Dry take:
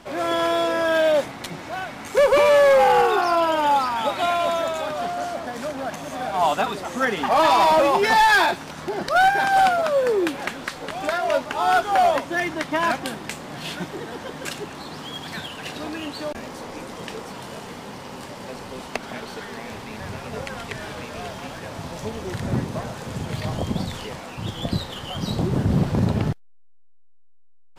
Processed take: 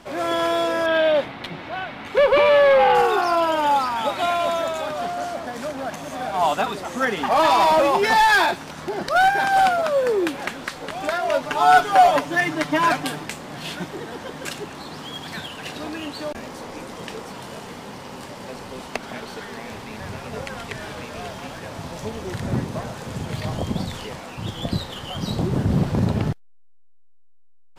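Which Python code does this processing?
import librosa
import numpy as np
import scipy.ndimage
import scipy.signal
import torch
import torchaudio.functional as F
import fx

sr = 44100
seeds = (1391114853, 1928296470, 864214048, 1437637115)

y = fx.high_shelf_res(x, sr, hz=4900.0, db=-12.0, q=1.5, at=(0.86, 2.95))
y = fx.comb(y, sr, ms=6.8, depth=0.97, at=(11.42, 13.24))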